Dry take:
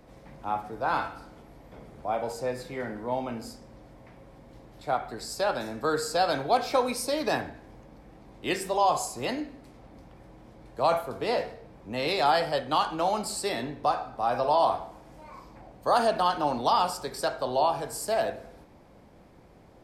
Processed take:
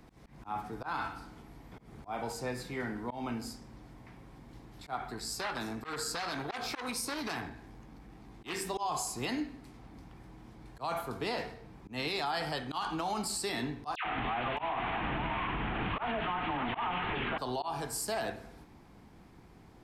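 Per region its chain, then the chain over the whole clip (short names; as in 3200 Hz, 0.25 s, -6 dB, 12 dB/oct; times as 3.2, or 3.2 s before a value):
5.13–8.67 doubler 18 ms -12.5 dB + core saturation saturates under 2200 Hz
13.95–17.38 delta modulation 16 kbps, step -23.5 dBFS + dispersion lows, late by 0.102 s, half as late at 1400 Hz + echo 0.617 s -10 dB
whole clip: bell 560 Hz -12.5 dB 0.51 oct; auto swell 0.147 s; limiter -25.5 dBFS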